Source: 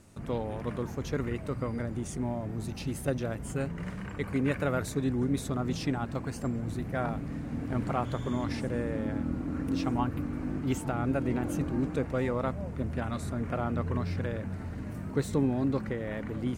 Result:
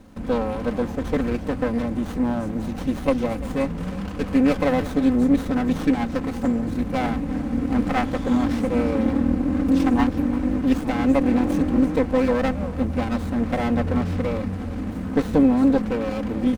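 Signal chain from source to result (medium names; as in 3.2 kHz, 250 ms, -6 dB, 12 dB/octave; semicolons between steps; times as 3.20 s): comb 3.9 ms, depth 82%; delay 343 ms -17.5 dB; sliding maximum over 17 samples; trim +8 dB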